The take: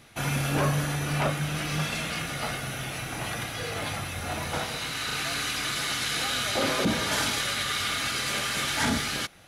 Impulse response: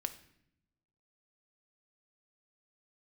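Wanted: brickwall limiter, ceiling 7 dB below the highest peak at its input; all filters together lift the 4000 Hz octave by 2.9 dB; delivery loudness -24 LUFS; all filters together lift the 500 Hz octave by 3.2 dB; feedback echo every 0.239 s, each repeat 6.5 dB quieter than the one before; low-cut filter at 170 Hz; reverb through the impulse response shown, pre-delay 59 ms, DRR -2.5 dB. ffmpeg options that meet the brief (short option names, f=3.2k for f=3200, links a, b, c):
-filter_complex "[0:a]highpass=170,equalizer=f=500:t=o:g=4,equalizer=f=4k:t=o:g=3.5,alimiter=limit=-18dB:level=0:latency=1,aecho=1:1:239|478|717|956|1195|1434:0.473|0.222|0.105|0.0491|0.0231|0.0109,asplit=2[a][b];[1:a]atrim=start_sample=2205,adelay=59[c];[b][c]afir=irnorm=-1:irlink=0,volume=3dB[d];[a][d]amix=inputs=2:normalize=0,volume=-2dB"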